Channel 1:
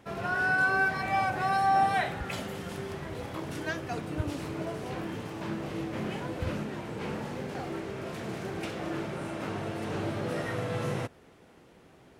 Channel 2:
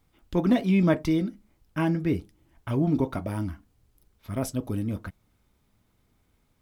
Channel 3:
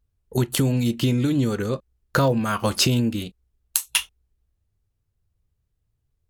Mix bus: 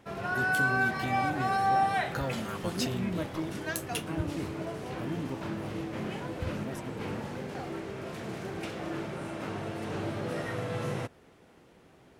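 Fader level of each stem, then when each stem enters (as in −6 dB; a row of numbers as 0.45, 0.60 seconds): −1.5, −13.0, −15.0 decibels; 0.00, 2.30, 0.00 seconds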